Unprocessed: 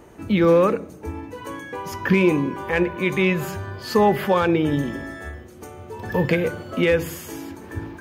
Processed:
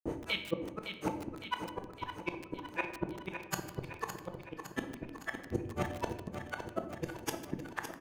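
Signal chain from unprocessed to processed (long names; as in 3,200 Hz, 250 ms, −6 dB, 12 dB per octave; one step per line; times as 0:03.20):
high-pass filter 43 Hz 6 dB per octave
hum removal 360 Hz, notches 6
downward compressor 20 to 1, threshold −24 dBFS, peak gain reduction 13 dB
brickwall limiter −25.5 dBFS, peak gain reduction 11.5 dB
automatic gain control gain up to 7 dB
granular cloud 175 ms, grains 4 per second, pitch spread up and down by 0 semitones
two-band tremolo in antiphase 1.6 Hz, depth 100%, crossover 680 Hz
gate with flip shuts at −36 dBFS, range −40 dB
on a send: repeating echo 561 ms, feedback 57%, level −8.5 dB
on the sum: rectangular room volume 330 cubic metres, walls mixed, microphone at 0.62 metres
feedback echo at a low word length 151 ms, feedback 80%, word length 8 bits, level −11.5 dB
level +15.5 dB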